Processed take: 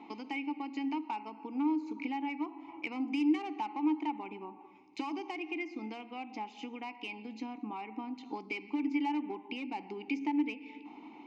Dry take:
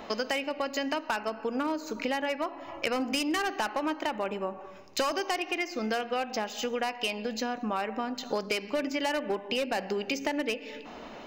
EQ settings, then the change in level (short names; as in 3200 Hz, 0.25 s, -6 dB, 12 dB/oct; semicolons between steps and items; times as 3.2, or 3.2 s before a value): vowel filter u; air absorption 55 m; high shelf 4900 Hz +10.5 dB; +4.5 dB